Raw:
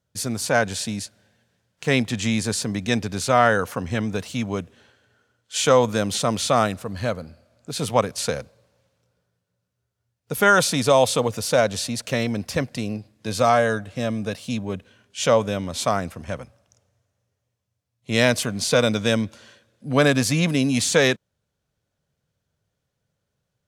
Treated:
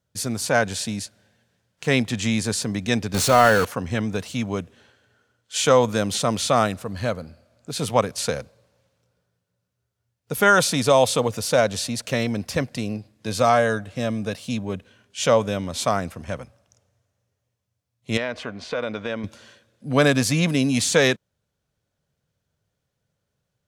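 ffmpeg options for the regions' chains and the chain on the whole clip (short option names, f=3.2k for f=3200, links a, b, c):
-filter_complex "[0:a]asettb=1/sr,asplit=3[a][b][c];[a]atrim=end=3.144[d];[b]atrim=start=3.14:end=3.65,asetpts=PTS-STARTPTS,afade=t=in:d=0.004:c=qsin,afade=t=out:st=0.506:d=0.004:c=qsin,aeval=exprs='val(0)+0.5*0.0944*sgn(val(0))':c=same,aeval=exprs='val(0)+0.0141*sin(2*PI*4400*n/s)':c=same,bandreject=f=4.7k:w=16[e];[c]atrim=start=3.646[f];[d][e]acrossfade=d=0.004:c1=hsin:c2=qsin[g];[g][f]acrossfade=d=0.004:c1=qsin:c2=hsin,asettb=1/sr,asplit=3[h][i][j];[h]atrim=end=18.174[k];[i]atrim=start=18.17:end=19.24,asetpts=PTS-STARTPTS,afade=t=in:d=0.004:c=qsin,afade=t=out:st=1.066:d=0.004:c=qsin,lowpass=2.3k,acompressor=threshold=-19dB:ratio=6:attack=3.2:release=140:knee=1:detection=peak,equalizer=f=130:w=0.72:g=-12[l];[j]atrim=start=19.236[m];[k][l]acrossfade=d=0.004:c1=hsin:c2=qsin[n];[n][m]acrossfade=d=0.004:c1=qsin:c2=hsin"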